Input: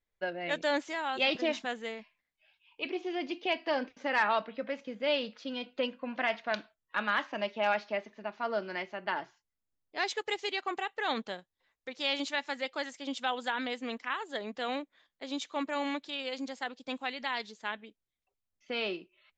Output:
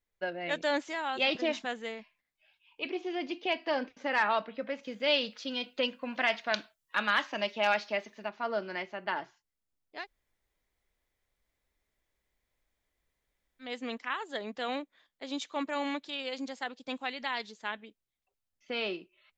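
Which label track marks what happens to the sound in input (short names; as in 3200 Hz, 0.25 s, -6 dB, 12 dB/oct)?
4.830000	8.290000	high shelf 3000 Hz +10.5 dB
9.990000	13.670000	room tone, crossfade 0.16 s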